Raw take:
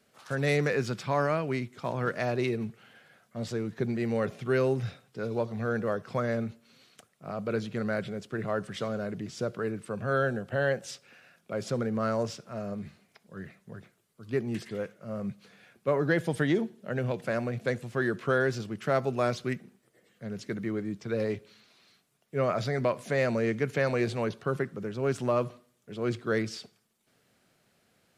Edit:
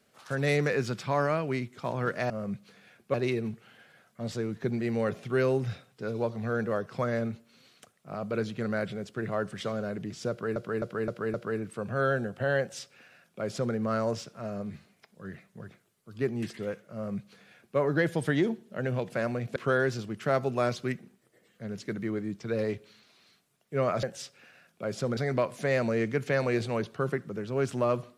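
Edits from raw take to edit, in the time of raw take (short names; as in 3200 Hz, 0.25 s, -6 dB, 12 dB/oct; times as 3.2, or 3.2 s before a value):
9.46–9.72 loop, 5 plays
10.72–11.86 copy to 22.64
15.06–15.9 copy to 2.3
17.68–18.17 cut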